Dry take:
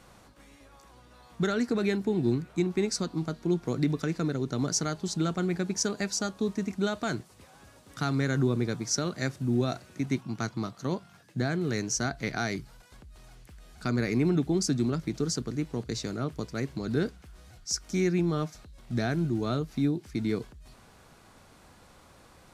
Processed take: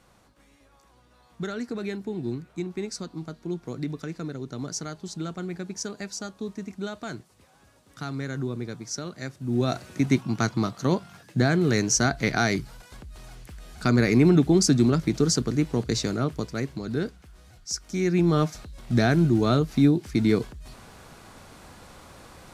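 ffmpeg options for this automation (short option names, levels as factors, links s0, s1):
-af "volume=5.96,afade=t=in:st=9.41:d=0.45:silence=0.251189,afade=t=out:st=15.97:d=0.88:silence=0.421697,afade=t=in:st=17.99:d=0.4:silence=0.398107"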